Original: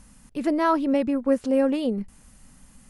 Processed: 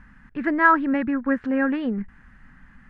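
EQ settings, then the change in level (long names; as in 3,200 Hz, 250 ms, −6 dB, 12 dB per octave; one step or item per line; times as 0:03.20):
low-pass with resonance 1,700 Hz, resonance Q 5.2
parametric band 550 Hz −9.5 dB 0.93 octaves
+2.0 dB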